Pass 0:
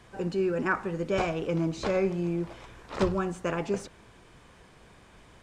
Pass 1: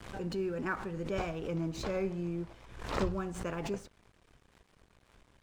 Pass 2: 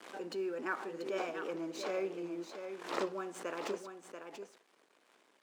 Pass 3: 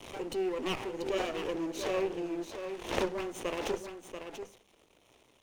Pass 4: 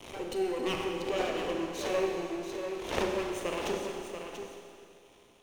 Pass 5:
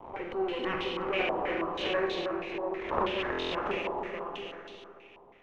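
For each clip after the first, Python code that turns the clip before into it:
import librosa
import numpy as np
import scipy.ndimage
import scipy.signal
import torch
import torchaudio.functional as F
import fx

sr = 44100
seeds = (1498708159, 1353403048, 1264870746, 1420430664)

y1 = fx.low_shelf(x, sr, hz=100.0, db=9.5)
y1 = np.sign(y1) * np.maximum(np.abs(y1) - 10.0 ** (-51.0 / 20.0), 0.0)
y1 = fx.pre_swell(y1, sr, db_per_s=72.0)
y1 = y1 * librosa.db_to_amplitude(-8.0)
y2 = scipy.signal.sosfilt(scipy.signal.butter(4, 290.0, 'highpass', fs=sr, output='sos'), y1)
y2 = y2 + 10.0 ** (-8.0 / 20.0) * np.pad(y2, (int(686 * sr / 1000.0), 0))[:len(y2)]
y2 = y2 * librosa.db_to_amplitude(-1.5)
y3 = fx.lower_of_two(y2, sr, delay_ms=0.32)
y3 = fx.hum_notches(y3, sr, base_hz=50, count=4)
y3 = y3 * librosa.db_to_amplitude(5.5)
y4 = fx.rev_schroeder(y3, sr, rt60_s=2.3, comb_ms=30, drr_db=2.0)
y5 = y4 + 10.0 ** (-6.5 / 20.0) * np.pad(y4, (int(320 * sr / 1000.0), 0))[:len(y4)]
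y5 = fx.buffer_glitch(y5, sr, at_s=(3.31,), block=1024, repeats=8)
y5 = fx.filter_held_lowpass(y5, sr, hz=6.2, low_hz=920.0, high_hz=3700.0)
y5 = y5 * librosa.db_to_amplitude(-1.5)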